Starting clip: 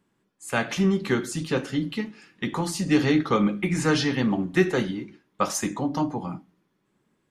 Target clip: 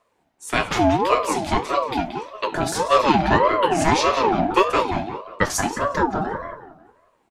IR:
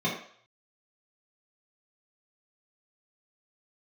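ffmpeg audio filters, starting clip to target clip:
-filter_complex "[0:a]asplit=2[s0][s1];[s1]adelay=180,lowpass=f=2400:p=1,volume=0.562,asplit=2[s2][s3];[s3]adelay=180,lowpass=f=2400:p=1,volume=0.37,asplit=2[s4][s5];[s5]adelay=180,lowpass=f=2400:p=1,volume=0.37,asplit=2[s6][s7];[s7]adelay=180,lowpass=f=2400:p=1,volume=0.37,asplit=2[s8][s9];[s9]adelay=180,lowpass=f=2400:p=1,volume=0.37[s10];[s0][s2][s4][s6][s8][s10]amix=inputs=6:normalize=0,aeval=exprs='val(0)*sin(2*PI*660*n/s+660*0.3/1.7*sin(2*PI*1.7*n/s))':c=same,volume=2.11"

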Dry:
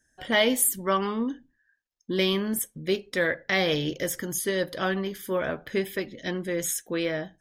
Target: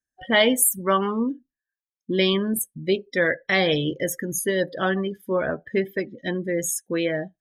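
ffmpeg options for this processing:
-af "afftdn=nr=26:nf=-34,volume=1.58"

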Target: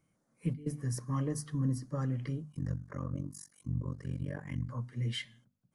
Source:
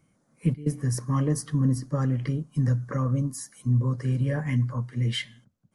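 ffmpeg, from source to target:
-filter_complex "[0:a]bandreject=f=50:t=h:w=6,bandreject=f=100:t=h:w=6,bandreject=f=150:t=h:w=6,bandreject=f=200:t=h:w=6,bandreject=f=250:t=h:w=6,asettb=1/sr,asplit=3[s0][s1][s2];[s0]atrim=end=2.524[s3];[s1]atrim=start=2.52:end=4.69,asetpts=PTS-STARTPTS,afade=t=in:d=0.004:c=qsin,afade=t=out:st=2.166:d=0.004:c=qsin,tremolo=f=47:d=0.974[s4];[s2]atrim=start=4.686[s5];[s3][s4]acrossfade=d=0.004:c1=hsin:c2=qsin[s6];[s6][s5]acrossfade=d=0.004:c1=qsin:c2=hsin,volume=0.398"

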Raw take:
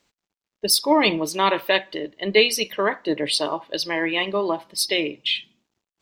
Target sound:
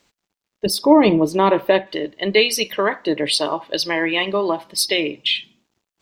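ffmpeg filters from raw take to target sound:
-filter_complex "[0:a]asettb=1/sr,asplit=3[s0][s1][s2];[s0]atrim=end=0.664[s3];[s1]atrim=start=0.66:end=1.87,asetpts=PTS-STARTPTS,afade=t=in:d=0.004:c=qsin,afade=t=out:st=1.206:d=0.004:c=qsin,tiltshelf=f=1200:g=9[s4];[s2]atrim=start=1.866[s5];[s3][s4]acrossfade=d=0.004:c1=hsin:c2=qsin[s6];[s6][s5]acrossfade=d=0.004:c1=qsin:c2=hsin,asplit=2[s7][s8];[s8]acompressor=threshold=0.0631:ratio=6,volume=1.26[s9];[s7][s9]amix=inputs=2:normalize=0,volume=0.841"

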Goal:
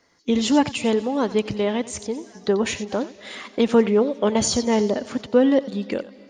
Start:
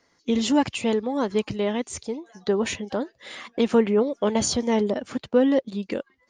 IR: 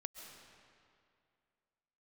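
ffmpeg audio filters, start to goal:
-filter_complex "[0:a]asplit=2[s0][s1];[s1]equalizer=f=5300:t=o:w=0.96:g=11[s2];[1:a]atrim=start_sample=2205,adelay=90[s3];[s2][s3]afir=irnorm=-1:irlink=0,volume=0.211[s4];[s0][s4]amix=inputs=2:normalize=0,volume=1.33"

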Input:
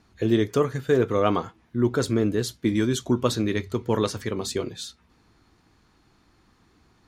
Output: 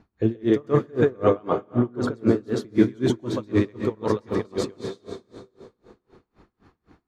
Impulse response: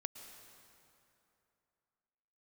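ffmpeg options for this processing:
-filter_complex "[0:a]lowpass=f=1100:p=1,alimiter=limit=0.2:level=0:latency=1:release=167,asplit=2[s0][s1];[1:a]atrim=start_sample=2205,lowshelf=f=110:g=-12,adelay=131[s2];[s1][s2]afir=irnorm=-1:irlink=0,volume=2.24[s3];[s0][s3]amix=inputs=2:normalize=0,aeval=exprs='val(0)*pow(10,-31*(0.5-0.5*cos(2*PI*3.9*n/s))/20)':c=same,volume=1.88"

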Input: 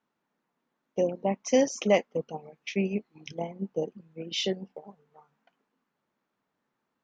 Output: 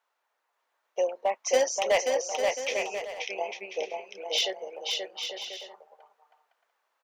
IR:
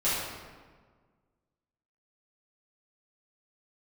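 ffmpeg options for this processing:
-filter_complex "[0:a]highpass=f=570:w=0.5412,highpass=f=570:w=1.3066,volume=14.1,asoftclip=hard,volume=0.0708,asplit=2[s0][s1];[s1]aecho=0:1:530|848|1039|1153|1222:0.631|0.398|0.251|0.158|0.1[s2];[s0][s2]amix=inputs=2:normalize=0,volume=1.68"

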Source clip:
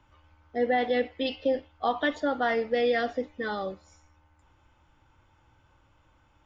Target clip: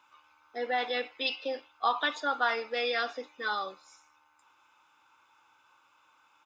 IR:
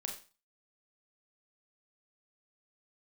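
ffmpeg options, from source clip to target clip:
-af "highpass=820,equalizer=f=1800:t=o:w=1.5:g=-3.5,aecho=1:1:0.8:0.53,volume=1.78"

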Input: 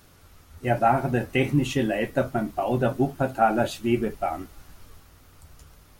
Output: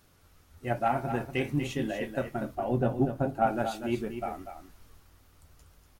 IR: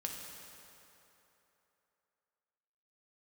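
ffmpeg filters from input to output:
-filter_complex "[0:a]aeval=exprs='0.422*(cos(1*acos(clip(val(0)/0.422,-1,1)))-cos(1*PI/2))+0.0376*(cos(3*acos(clip(val(0)/0.422,-1,1)))-cos(3*PI/2))':c=same,asettb=1/sr,asplit=3[s0][s1][s2];[s0]atrim=end=2.554[s3];[s1]atrim=start=2.55:end=3.47,asetpts=PTS-STARTPTS,afade=t=in:d=0.004:c=qsin,afade=t=out:st=0.916:d=0.004:c=qsin,tiltshelf=f=970:g=5.5[s4];[s2]atrim=start=3.466[s5];[s3][s4]acrossfade=d=0.004:c1=hsin:c2=qsin[s6];[s6][s5]acrossfade=d=0.004:c1=qsin:c2=hsin,aecho=1:1:242:0.355,volume=0.531"

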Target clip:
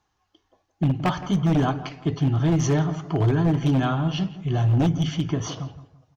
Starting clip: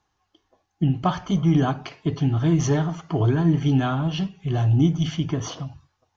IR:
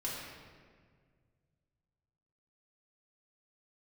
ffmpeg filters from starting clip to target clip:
-filter_complex "[0:a]aeval=exprs='0.2*(abs(mod(val(0)/0.2+3,4)-2)-1)':c=same,asplit=2[s0][s1];[s1]adelay=168,lowpass=f=1700:p=1,volume=0.211,asplit=2[s2][s3];[s3]adelay=168,lowpass=f=1700:p=1,volume=0.35,asplit=2[s4][s5];[s5]adelay=168,lowpass=f=1700:p=1,volume=0.35[s6];[s0][s2][s4][s6]amix=inputs=4:normalize=0"

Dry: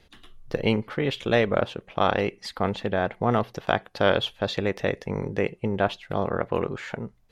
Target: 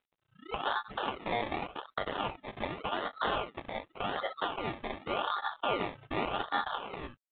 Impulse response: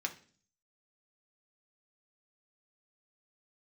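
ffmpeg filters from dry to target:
-filter_complex "[0:a]asplit=2[s0][s1];[s1]aecho=0:1:12|29|69:0.631|0.473|0.282[s2];[s0][s2]amix=inputs=2:normalize=0,agate=range=0.0282:threshold=0.0112:ratio=16:detection=peak,asubboost=boost=5.5:cutoff=90,asplit=2[s3][s4];[s4]acompressor=threshold=0.0447:ratio=10,volume=1.26[s5];[s3][s5]amix=inputs=2:normalize=0,alimiter=limit=0.299:level=0:latency=1:release=280,acompressor=mode=upward:threshold=0.0112:ratio=2.5,afftdn=nr=13:nf=-29,aeval=exprs='val(0)*sin(2*PI*1300*n/s)':c=same,acrusher=samples=24:mix=1:aa=0.000001:lfo=1:lforange=14.4:lforate=0.87,lowshelf=f=370:g=-10,volume=0.531" -ar 8000 -c:a adpcm_g726 -b:a 40k

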